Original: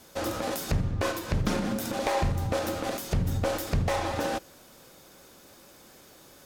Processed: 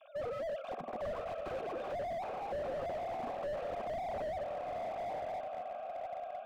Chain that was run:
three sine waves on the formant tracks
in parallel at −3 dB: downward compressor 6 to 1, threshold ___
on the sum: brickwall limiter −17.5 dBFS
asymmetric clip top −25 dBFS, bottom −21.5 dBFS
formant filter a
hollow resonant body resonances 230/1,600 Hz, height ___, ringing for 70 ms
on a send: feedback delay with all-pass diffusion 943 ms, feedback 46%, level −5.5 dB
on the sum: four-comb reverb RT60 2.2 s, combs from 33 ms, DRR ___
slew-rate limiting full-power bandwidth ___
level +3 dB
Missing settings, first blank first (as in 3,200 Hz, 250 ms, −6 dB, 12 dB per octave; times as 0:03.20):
−40 dBFS, 13 dB, 15.5 dB, 6.8 Hz